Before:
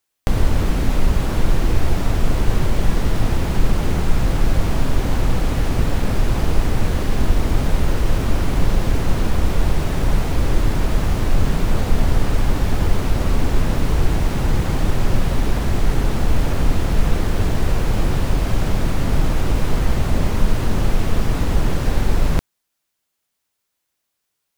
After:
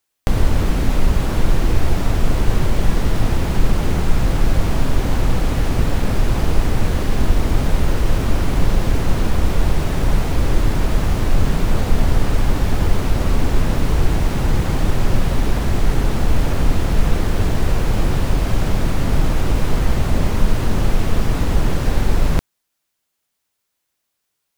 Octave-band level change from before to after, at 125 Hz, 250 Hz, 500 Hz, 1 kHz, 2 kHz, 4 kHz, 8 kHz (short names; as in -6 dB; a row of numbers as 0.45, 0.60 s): +1.0, +1.0, +1.0, +1.0, +1.0, +1.0, +1.0 dB